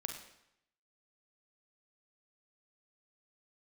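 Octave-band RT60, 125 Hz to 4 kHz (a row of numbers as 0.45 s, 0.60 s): 0.85 s, 0.80 s, 0.75 s, 0.80 s, 0.80 s, 0.75 s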